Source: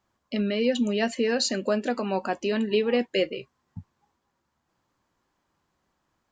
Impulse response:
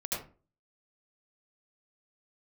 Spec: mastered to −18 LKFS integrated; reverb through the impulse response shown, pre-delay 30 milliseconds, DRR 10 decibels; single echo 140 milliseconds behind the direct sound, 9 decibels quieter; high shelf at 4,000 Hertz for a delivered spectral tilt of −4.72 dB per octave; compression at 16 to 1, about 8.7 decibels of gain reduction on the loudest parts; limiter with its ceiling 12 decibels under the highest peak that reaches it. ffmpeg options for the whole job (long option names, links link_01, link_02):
-filter_complex "[0:a]highshelf=frequency=4000:gain=-3.5,acompressor=threshold=-27dB:ratio=16,alimiter=level_in=6.5dB:limit=-24dB:level=0:latency=1,volume=-6.5dB,aecho=1:1:140:0.355,asplit=2[link_01][link_02];[1:a]atrim=start_sample=2205,adelay=30[link_03];[link_02][link_03]afir=irnorm=-1:irlink=0,volume=-14.5dB[link_04];[link_01][link_04]amix=inputs=2:normalize=0,volume=21dB"